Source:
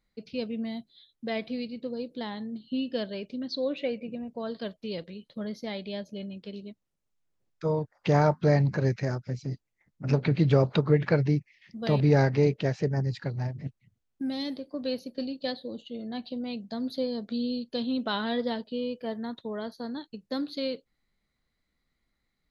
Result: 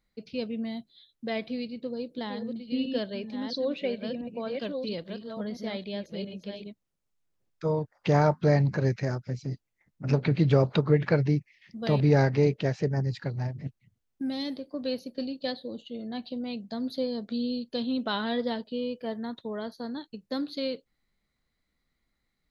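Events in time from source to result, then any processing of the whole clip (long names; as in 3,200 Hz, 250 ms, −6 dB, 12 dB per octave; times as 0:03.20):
0:01.50–0:06.67: delay that plays each chunk backwards 678 ms, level −5 dB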